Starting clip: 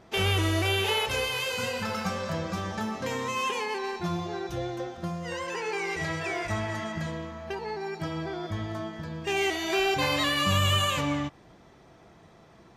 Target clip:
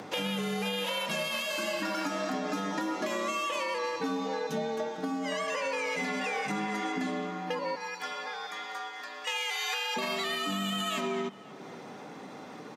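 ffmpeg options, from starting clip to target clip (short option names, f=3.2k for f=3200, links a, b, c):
-filter_complex "[0:a]asettb=1/sr,asplit=3[a][b][c];[a]atrim=end=7.754[d];[b]atrim=start=7.75:end=9.96,asetpts=PTS-STARTPTS,afade=t=in:d=0.004:c=qsin,afade=t=out:st=2.206:d=0.004:c=qsin,highpass=890[e];[c]atrim=start=9.956[f];[d][e]acrossfade=d=0.004:c1=hsin:c2=qsin[g];[g][f]acrossfade=d=0.004:c1=qsin:c2=hsin,acompressor=mode=upward:threshold=-40dB:ratio=2.5,alimiter=limit=-23dB:level=0:latency=1:release=93,acompressor=threshold=-32dB:ratio=6,afreqshift=100,asplit=2[h][i];[i]adelay=532,lowpass=f=1.5k:p=1,volume=-18dB,asplit=2[j][k];[k]adelay=532,lowpass=f=1.5k:p=1,volume=0.37,asplit=2[l][m];[m]adelay=532,lowpass=f=1.5k:p=1,volume=0.37[n];[h][j][l][n]amix=inputs=4:normalize=0,volume=3.5dB"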